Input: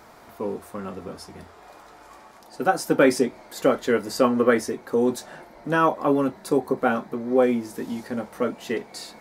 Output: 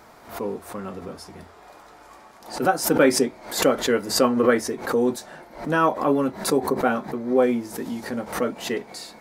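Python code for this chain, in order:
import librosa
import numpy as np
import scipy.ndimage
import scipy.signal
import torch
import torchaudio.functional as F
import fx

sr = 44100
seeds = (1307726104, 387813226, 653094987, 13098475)

y = fx.pre_swell(x, sr, db_per_s=120.0)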